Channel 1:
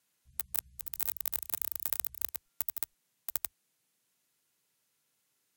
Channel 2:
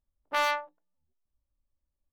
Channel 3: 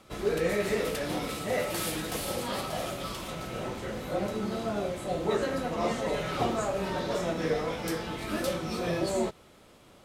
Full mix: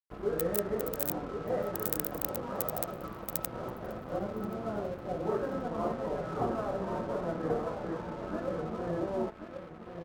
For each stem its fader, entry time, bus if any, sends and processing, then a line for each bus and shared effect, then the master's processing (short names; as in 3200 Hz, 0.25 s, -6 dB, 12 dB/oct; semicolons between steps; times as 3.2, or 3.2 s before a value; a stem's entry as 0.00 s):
-0.5 dB, 0.00 s, muted 1.16–1.73, no send, echo send -24 dB, dry
off
-3.0 dB, 0.00 s, no send, echo send -7 dB, steep low-pass 1500 Hz 36 dB/oct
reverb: off
echo: feedback echo 1.081 s, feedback 23%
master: crossover distortion -48.5 dBFS